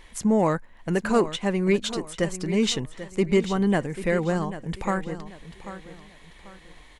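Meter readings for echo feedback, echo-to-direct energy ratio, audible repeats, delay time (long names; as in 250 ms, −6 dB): 33%, −12.5 dB, 3, 790 ms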